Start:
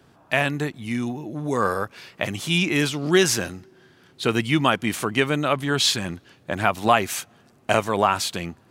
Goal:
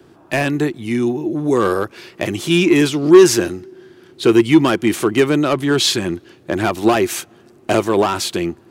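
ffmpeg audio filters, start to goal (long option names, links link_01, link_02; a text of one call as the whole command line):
ffmpeg -i in.wav -filter_complex "[0:a]acrossover=split=540|3900[link_01][link_02][link_03];[link_02]volume=20dB,asoftclip=hard,volume=-20dB[link_04];[link_01][link_04][link_03]amix=inputs=3:normalize=0,equalizer=frequency=350:width=3.2:gain=14,asoftclip=type=tanh:threshold=-5dB,volume=4dB" out.wav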